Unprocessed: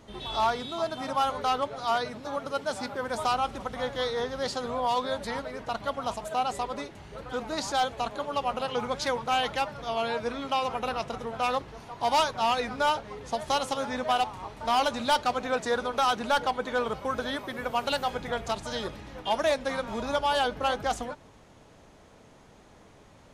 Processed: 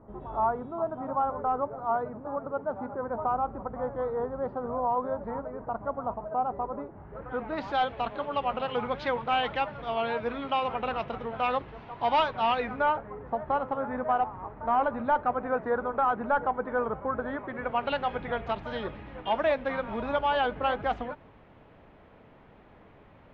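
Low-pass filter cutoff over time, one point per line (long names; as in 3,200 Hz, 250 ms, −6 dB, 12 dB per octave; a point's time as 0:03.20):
low-pass filter 24 dB per octave
0:06.90 1,200 Hz
0:07.73 3,100 Hz
0:12.54 3,100 Hz
0:13.13 1,600 Hz
0:17.23 1,600 Hz
0:17.93 2,800 Hz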